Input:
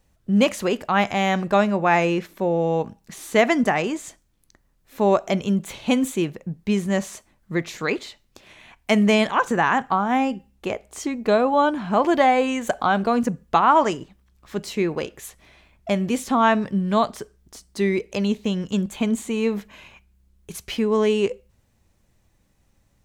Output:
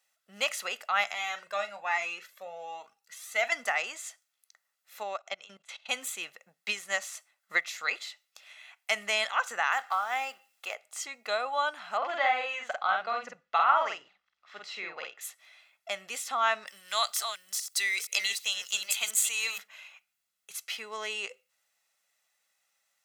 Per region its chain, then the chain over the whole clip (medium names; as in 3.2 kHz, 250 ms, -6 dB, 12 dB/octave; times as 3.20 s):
1.14–3.52 s: doubling 40 ms -12.5 dB + Shepard-style flanger rising 1.2 Hz
5.03–5.89 s: band-pass 120–6000 Hz + level held to a coarse grid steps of 20 dB
6.48–7.62 s: bass shelf 170 Hz -7.5 dB + transient shaper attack +10 dB, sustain -1 dB
9.72–10.75 s: companding laws mixed up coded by mu + high-pass 330 Hz
11.97–15.21 s: distance through air 190 m + doubling 48 ms -2.5 dB
16.67–19.58 s: chunks repeated in reverse 467 ms, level -7 dB + tilt EQ +4.5 dB/octave
whole clip: high-pass 1.3 kHz 12 dB/octave; comb 1.5 ms, depth 48%; trim -3 dB